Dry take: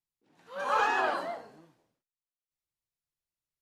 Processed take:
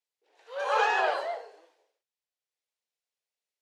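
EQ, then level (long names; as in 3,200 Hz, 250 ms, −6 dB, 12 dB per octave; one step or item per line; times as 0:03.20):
elliptic high-pass filter 430 Hz, stop band 60 dB
high-frequency loss of the air 53 metres
parametric band 1,200 Hz −8.5 dB 0.87 octaves
+6.5 dB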